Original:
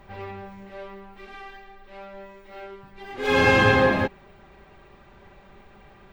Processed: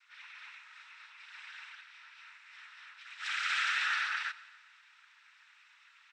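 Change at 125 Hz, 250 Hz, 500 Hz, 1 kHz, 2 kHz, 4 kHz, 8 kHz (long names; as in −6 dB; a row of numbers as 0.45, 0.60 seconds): below −40 dB, below −40 dB, below −40 dB, −14.5 dB, −9.5 dB, −5.5 dB, −4.5 dB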